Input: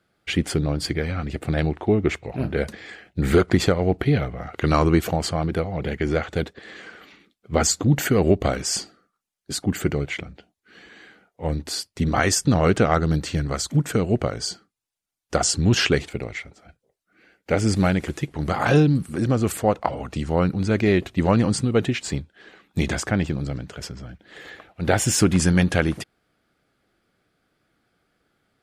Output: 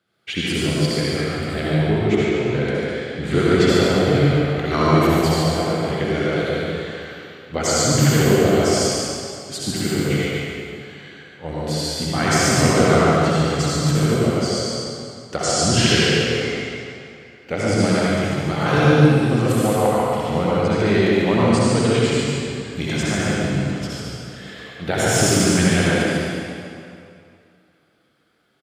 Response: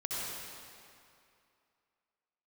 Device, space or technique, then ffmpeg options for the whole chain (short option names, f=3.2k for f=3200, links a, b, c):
PA in a hall: -filter_complex "[0:a]highpass=100,equalizer=f=3.4k:t=o:w=0.7:g=5,aecho=1:1:143:0.562[a];[1:a]atrim=start_sample=2205[b];[a][b]afir=irnorm=-1:irlink=0,asettb=1/sr,asplit=3[c][d][e];[c]atrim=end=2.254[f];[d]atrim=start=2.25:end=3.69,asetpts=PTS-STARTPTS,afade=t=in:d=0.004:c=qsin,afade=t=out:st=1.436:d=0.004:c=qsin,lowpass=8.1k[g];[e]atrim=start=3.686[h];[f][g]acrossfade=d=0.004:c1=hsin:c2=qsin[i];[i][h]acrossfade=d=0.004:c1=qsin:c2=hsin,volume=-1.5dB"